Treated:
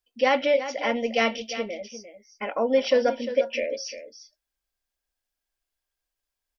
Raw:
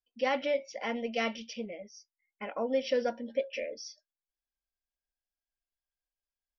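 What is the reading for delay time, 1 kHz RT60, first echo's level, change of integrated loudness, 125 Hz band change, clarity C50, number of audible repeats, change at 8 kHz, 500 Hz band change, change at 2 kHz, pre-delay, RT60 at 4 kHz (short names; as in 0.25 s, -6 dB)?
0.35 s, none, -12.0 dB, +8.5 dB, n/a, none, 1, n/a, +8.5 dB, +9.0 dB, none, none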